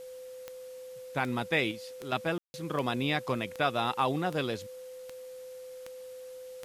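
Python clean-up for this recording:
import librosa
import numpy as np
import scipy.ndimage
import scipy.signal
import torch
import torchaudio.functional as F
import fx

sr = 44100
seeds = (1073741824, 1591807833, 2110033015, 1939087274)

y = fx.fix_declick_ar(x, sr, threshold=10.0)
y = fx.notch(y, sr, hz=510.0, q=30.0)
y = fx.fix_ambience(y, sr, seeds[0], print_start_s=5.2, print_end_s=5.7, start_s=2.38, end_s=2.54)
y = fx.noise_reduce(y, sr, print_start_s=5.2, print_end_s=5.7, reduce_db=30.0)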